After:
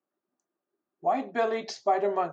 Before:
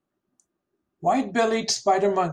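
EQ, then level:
resonant band-pass 440 Hz, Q 0.64
high-frequency loss of the air 130 metres
spectral tilt +4 dB per octave
0.0 dB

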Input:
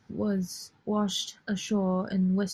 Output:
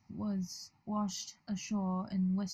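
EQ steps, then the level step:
phaser with its sweep stopped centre 2,300 Hz, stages 8
−4.5 dB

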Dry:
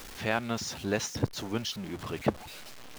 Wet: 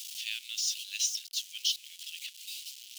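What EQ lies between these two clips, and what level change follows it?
elliptic high-pass filter 2,900 Hz, stop band 70 dB
+7.0 dB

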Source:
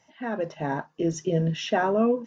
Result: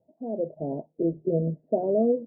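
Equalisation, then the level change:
Chebyshev low-pass filter 650 Hz, order 5
low-shelf EQ 190 Hz −8 dB
+2.5 dB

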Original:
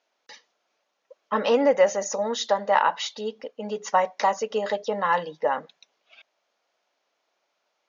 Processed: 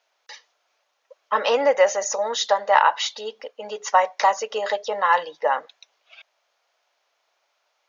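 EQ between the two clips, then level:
high-pass filter 590 Hz 12 dB per octave
+5.0 dB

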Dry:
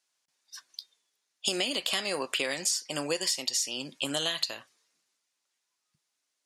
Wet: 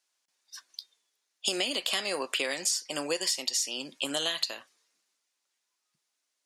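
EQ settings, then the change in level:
high-pass filter 220 Hz 12 dB per octave
0.0 dB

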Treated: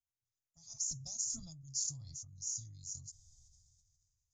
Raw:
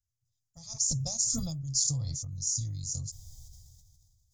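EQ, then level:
transistor ladder low-pass 7,500 Hz, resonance 55%
parametric band 490 Hz −10.5 dB 0.37 octaves
−6.5 dB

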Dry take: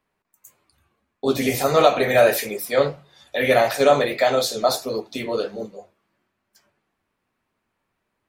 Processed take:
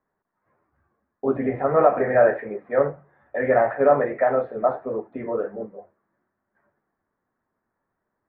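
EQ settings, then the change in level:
Chebyshev low-pass filter 1,800 Hz, order 4
high-frequency loss of the air 270 metres
low-shelf EQ 130 Hz −4.5 dB
0.0 dB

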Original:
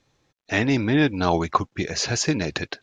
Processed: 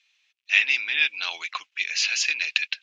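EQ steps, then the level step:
high-pass with resonance 2,600 Hz, resonance Q 4.1
high-frequency loss of the air 52 metres
+1.0 dB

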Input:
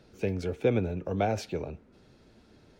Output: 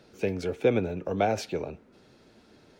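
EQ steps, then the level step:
low-shelf EQ 120 Hz −12 dB
+3.5 dB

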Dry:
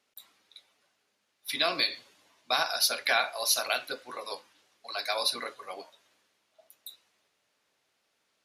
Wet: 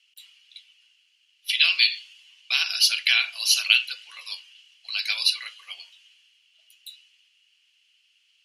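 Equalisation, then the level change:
high-pass with resonance 2,900 Hz, resonance Q 8.5
low-pass filter 10,000 Hz 12 dB per octave
notch filter 3,700 Hz, Q 7.7
+4.0 dB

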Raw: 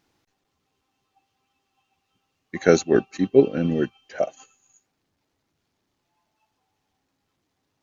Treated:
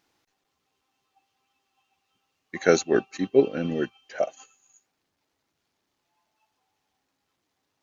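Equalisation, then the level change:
low-shelf EQ 300 Hz −9 dB
0.0 dB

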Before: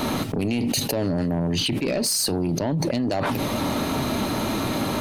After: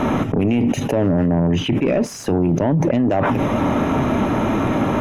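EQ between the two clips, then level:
moving average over 10 samples
+7.0 dB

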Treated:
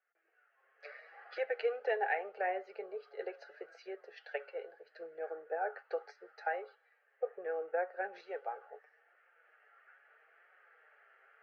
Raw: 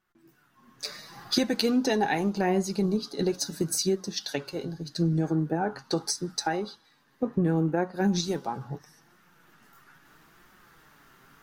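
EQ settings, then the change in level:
Chebyshev band-pass filter 450–3,700 Hz, order 4
high-frequency loss of the air 91 metres
phaser with its sweep stopped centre 1,000 Hz, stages 6
−2.5 dB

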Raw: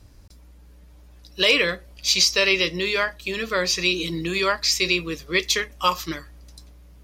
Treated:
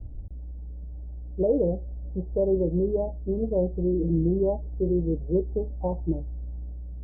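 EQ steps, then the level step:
Butterworth low-pass 850 Hz 96 dB per octave
spectral tilt −3.5 dB per octave
−2.5 dB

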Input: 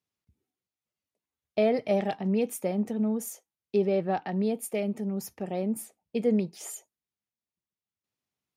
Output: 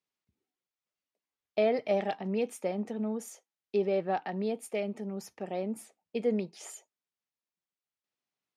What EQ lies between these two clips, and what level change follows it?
high-pass filter 390 Hz 6 dB per octave
high-frequency loss of the air 60 metres
0.0 dB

